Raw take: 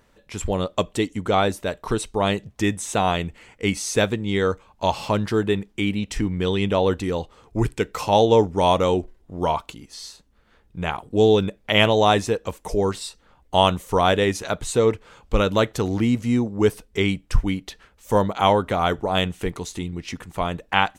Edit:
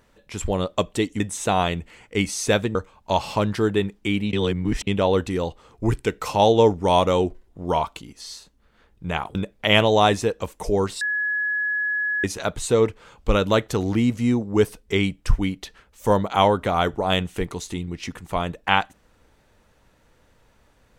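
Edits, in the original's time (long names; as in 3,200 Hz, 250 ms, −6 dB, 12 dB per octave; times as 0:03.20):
0:01.20–0:02.68: remove
0:04.23–0:04.48: remove
0:06.06–0:06.60: reverse
0:11.08–0:11.40: remove
0:13.06–0:14.29: beep over 1,690 Hz −21 dBFS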